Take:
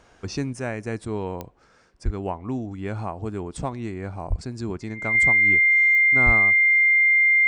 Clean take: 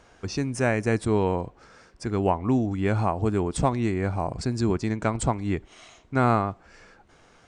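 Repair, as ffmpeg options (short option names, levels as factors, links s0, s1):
-filter_complex "[0:a]adeclick=t=4,bandreject=f=2100:w=30,asplit=3[s0][s1][s2];[s0]afade=t=out:st=2.04:d=0.02[s3];[s1]highpass=f=140:w=0.5412,highpass=f=140:w=1.3066,afade=t=in:st=2.04:d=0.02,afade=t=out:st=2.16:d=0.02[s4];[s2]afade=t=in:st=2.16:d=0.02[s5];[s3][s4][s5]amix=inputs=3:normalize=0,asplit=3[s6][s7][s8];[s6]afade=t=out:st=4.29:d=0.02[s9];[s7]highpass=f=140:w=0.5412,highpass=f=140:w=1.3066,afade=t=in:st=4.29:d=0.02,afade=t=out:st=4.41:d=0.02[s10];[s8]afade=t=in:st=4.41:d=0.02[s11];[s9][s10][s11]amix=inputs=3:normalize=0,asplit=3[s12][s13][s14];[s12]afade=t=out:st=6.25:d=0.02[s15];[s13]highpass=f=140:w=0.5412,highpass=f=140:w=1.3066,afade=t=in:st=6.25:d=0.02,afade=t=out:st=6.37:d=0.02[s16];[s14]afade=t=in:st=6.37:d=0.02[s17];[s15][s16][s17]amix=inputs=3:normalize=0,asetnsamples=n=441:p=0,asendcmd='0.53 volume volume 6dB',volume=1"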